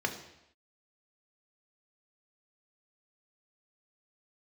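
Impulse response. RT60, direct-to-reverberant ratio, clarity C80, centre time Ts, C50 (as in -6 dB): not exponential, 3.5 dB, 12.0 dB, 18 ms, 9.5 dB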